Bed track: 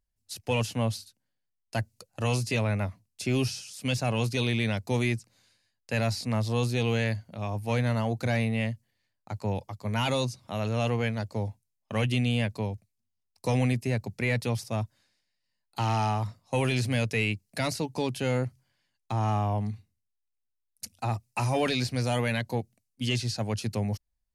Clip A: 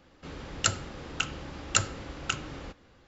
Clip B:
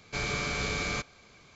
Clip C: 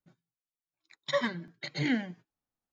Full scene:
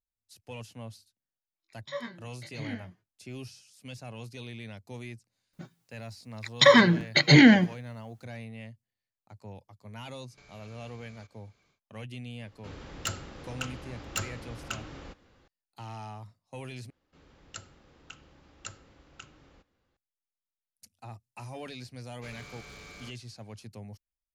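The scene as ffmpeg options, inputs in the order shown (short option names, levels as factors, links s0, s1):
-filter_complex "[3:a]asplit=2[s0][s1];[2:a]asplit=2[s2][s3];[1:a]asplit=2[s4][s5];[0:a]volume=0.178[s6];[s0]asplit=2[s7][s8];[s8]adelay=21,volume=0.708[s9];[s7][s9]amix=inputs=2:normalize=0[s10];[s1]alimiter=level_in=14.1:limit=0.891:release=50:level=0:latency=1[s11];[s2]acompressor=threshold=0.01:ratio=6:attack=3.2:release=140:knee=1:detection=peak[s12];[s4]asoftclip=type=tanh:threshold=0.106[s13];[s3]aeval=exprs='0.0501*(abs(mod(val(0)/0.0501+3,4)-2)-1)':c=same[s14];[s6]asplit=2[s15][s16];[s15]atrim=end=16.904[s17];[s5]atrim=end=3.07,asetpts=PTS-STARTPTS,volume=0.133[s18];[s16]atrim=start=19.966[s19];[s10]atrim=end=2.72,asetpts=PTS-STARTPTS,volume=0.282,afade=t=in:d=0.004:c=hsin,afade=t=out:st=2.716:d=0.004:c=hsin,adelay=790[s20];[s11]atrim=end=2.72,asetpts=PTS-STARTPTS,volume=0.531,afade=t=in:d=0.004:c=hsin,afade=t=out:st=2.716:d=0.004:c=hsin,adelay=243873S[s21];[s12]atrim=end=1.55,asetpts=PTS-STARTPTS,volume=0.2,afade=t=in:d=0.1,afade=t=out:st=1.45:d=0.1,adelay=10250[s22];[s13]atrim=end=3.07,asetpts=PTS-STARTPTS,volume=0.668,afade=t=in:d=0.004:c=hsin,afade=t=out:st=3.066:d=0.004:c=hsin,adelay=12410[s23];[s14]atrim=end=1.55,asetpts=PTS-STARTPTS,volume=0.168,afade=t=in:d=0.004:c=hsin,afade=t=out:st=1.546:d=0.004:c=hsin,adelay=22090[s24];[s17][s18]acrossfade=d=0.004:c1=hsin:c2=hsin[s25];[s25][s19]acrossfade=d=0.004:c1=hsin:c2=hsin[s26];[s26][s20][s21][s22][s23][s24]amix=inputs=6:normalize=0"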